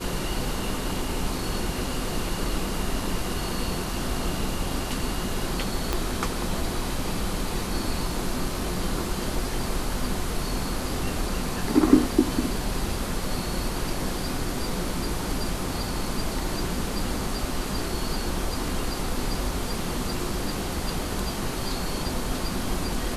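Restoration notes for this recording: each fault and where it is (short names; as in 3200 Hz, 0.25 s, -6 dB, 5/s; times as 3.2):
5.93 pop -10 dBFS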